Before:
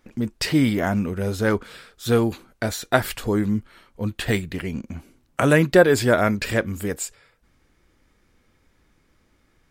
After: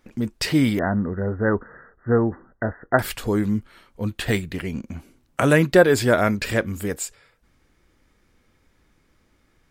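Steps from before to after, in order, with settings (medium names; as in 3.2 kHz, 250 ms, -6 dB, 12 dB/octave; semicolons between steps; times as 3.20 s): 0.79–2.99 s: brick-wall FIR low-pass 2 kHz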